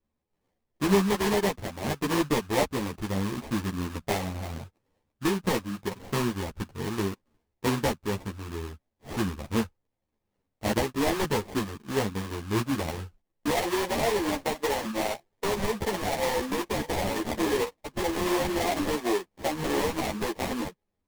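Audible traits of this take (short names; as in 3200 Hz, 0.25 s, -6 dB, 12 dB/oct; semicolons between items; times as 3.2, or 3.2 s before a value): aliases and images of a low sample rate 1400 Hz, jitter 20%; a shimmering, thickened sound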